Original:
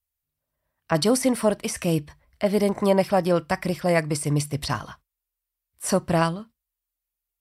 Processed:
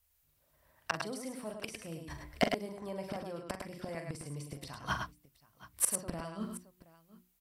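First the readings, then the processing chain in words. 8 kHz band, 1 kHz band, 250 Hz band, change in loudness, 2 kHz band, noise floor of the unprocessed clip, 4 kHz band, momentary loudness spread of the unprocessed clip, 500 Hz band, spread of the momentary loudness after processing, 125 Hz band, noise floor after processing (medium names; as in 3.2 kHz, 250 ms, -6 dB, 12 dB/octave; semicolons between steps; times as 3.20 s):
-6.0 dB, -13.0 dB, -16.5 dB, -14.5 dB, -9.5 dB, under -85 dBFS, -11.5 dB, 8 LU, -17.5 dB, 13 LU, -17.5 dB, -74 dBFS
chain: hum notches 60/120/180/240/300/360 Hz; in parallel at -2 dB: peak limiter -19.5 dBFS, peak gain reduction 11.5 dB; on the sum: inverted gate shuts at -16 dBFS, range -29 dB; sine folder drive 4 dB, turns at -13 dBFS; multi-tap echo 42/51/102/105/724 ms -9/-19/-18.5/-5.5/-19.5 dB; trim -3.5 dB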